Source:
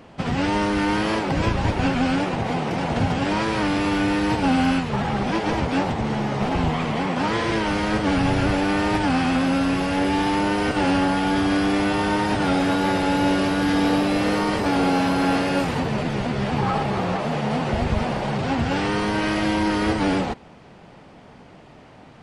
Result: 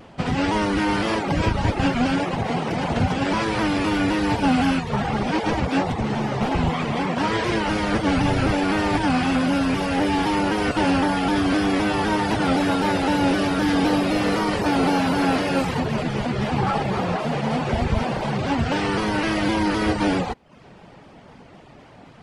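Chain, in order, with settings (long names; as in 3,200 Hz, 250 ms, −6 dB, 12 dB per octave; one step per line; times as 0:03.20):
reverb reduction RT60 0.51 s
pitch modulation by a square or saw wave saw down 3.9 Hz, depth 100 cents
level +1.5 dB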